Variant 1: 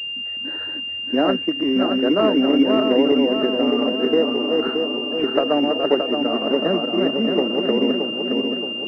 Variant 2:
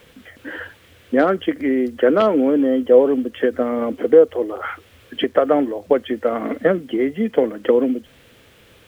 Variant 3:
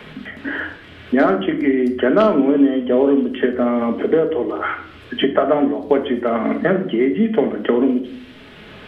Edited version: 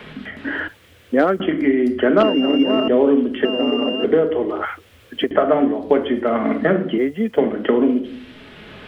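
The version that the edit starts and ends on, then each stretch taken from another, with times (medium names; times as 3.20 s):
3
0.68–1.40 s: from 2
2.23–2.88 s: from 1
3.45–4.04 s: from 1
4.65–5.31 s: from 2
6.98–7.38 s: from 2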